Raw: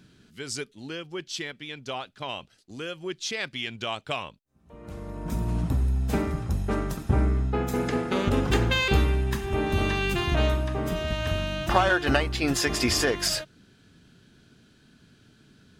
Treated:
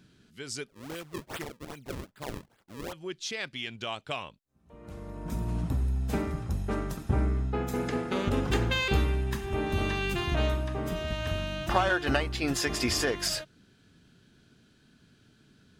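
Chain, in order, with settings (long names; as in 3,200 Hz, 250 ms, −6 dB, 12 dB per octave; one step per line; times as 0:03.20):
0:00.68–0:02.93: sample-and-hold swept by an LFO 35×, swing 160% 2.5 Hz
level −4 dB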